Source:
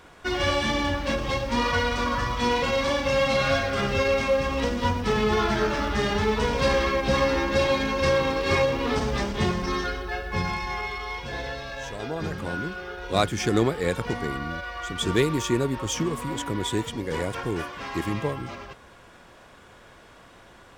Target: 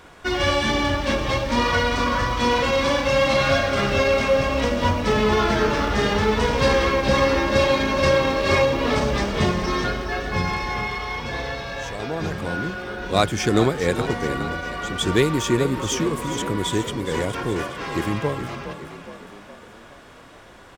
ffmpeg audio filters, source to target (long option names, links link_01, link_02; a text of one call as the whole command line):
ffmpeg -i in.wav -filter_complex "[0:a]asplit=7[link_01][link_02][link_03][link_04][link_05][link_06][link_07];[link_02]adelay=416,afreqshift=32,volume=-11dB[link_08];[link_03]adelay=832,afreqshift=64,volume=-16.2dB[link_09];[link_04]adelay=1248,afreqshift=96,volume=-21.4dB[link_10];[link_05]adelay=1664,afreqshift=128,volume=-26.6dB[link_11];[link_06]adelay=2080,afreqshift=160,volume=-31.8dB[link_12];[link_07]adelay=2496,afreqshift=192,volume=-37dB[link_13];[link_01][link_08][link_09][link_10][link_11][link_12][link_13]amix=inputs=7:normalize=0,volume=3.5dB" out.wav